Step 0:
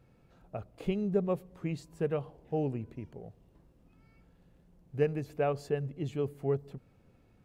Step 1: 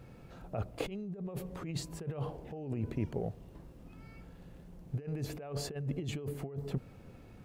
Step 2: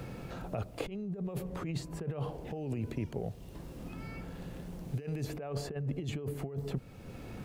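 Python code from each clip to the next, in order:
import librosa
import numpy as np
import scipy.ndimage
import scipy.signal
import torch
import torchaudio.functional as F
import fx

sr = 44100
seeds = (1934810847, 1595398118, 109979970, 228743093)

y1 = fx.over_compress(x, sr, threshold_db=-41.0, ratio=-1.0)
y1 = y1 * 10.0 ** (3.0 / 20.0)
y2 = fx.band_squash(y1, sr, depth_pct=70)
y2 = y2 * 10.0 ** (1.0 / 20.0)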